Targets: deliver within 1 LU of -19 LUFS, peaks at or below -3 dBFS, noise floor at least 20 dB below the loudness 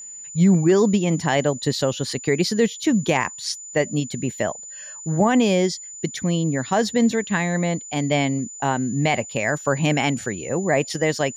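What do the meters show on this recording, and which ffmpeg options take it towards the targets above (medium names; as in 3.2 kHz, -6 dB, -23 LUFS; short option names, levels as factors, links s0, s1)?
steady tone 7 kHz; tone level -35 dBFS; loudness -21.5 LUFS; peak level -8.5 dBFS; loudness target -19.0 LUFS
-> -af "bandreject=f=7000:w=30"
-af "volume=1.33"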